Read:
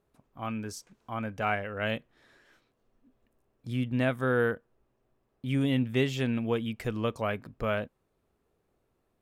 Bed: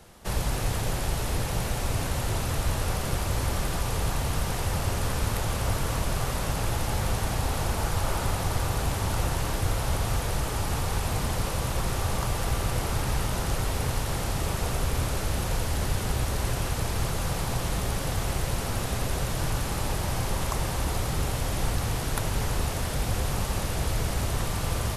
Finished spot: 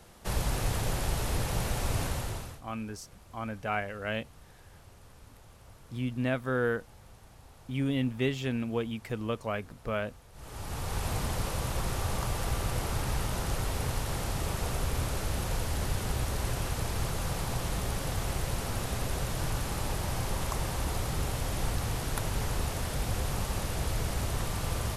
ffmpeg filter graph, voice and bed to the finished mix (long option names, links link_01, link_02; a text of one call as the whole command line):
ffmpeg -i stem1.wav -i stem2.wav -filter_complex "[0:a]adelay=2250,volume=-2.5dB[link_01];[1:a]volume=20dB,afade=type=out:start_time=2.02:duration=0.59:silence=0.0630957,afade=type=in:start_time=10.33:duration=0.73:silence=0.0749894[link_02];[link_01][link_02]amix=inputs=2:normalize=0" out.wav